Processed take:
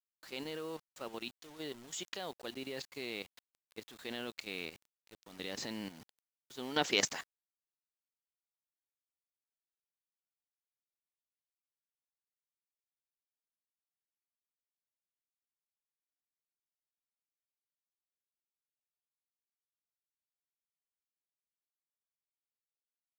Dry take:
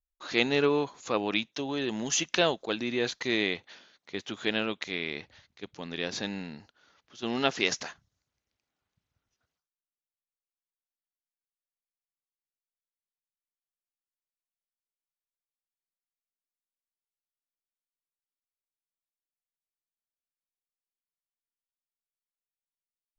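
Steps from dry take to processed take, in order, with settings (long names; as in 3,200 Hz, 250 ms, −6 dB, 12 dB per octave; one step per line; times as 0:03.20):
source passing by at 0:08.72, 31 m/s, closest 22 metres
transient designer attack −2 dB, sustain +2 dB
output level in coarse steps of 13 dB
bit reduction 11 bits
level +10.5 dB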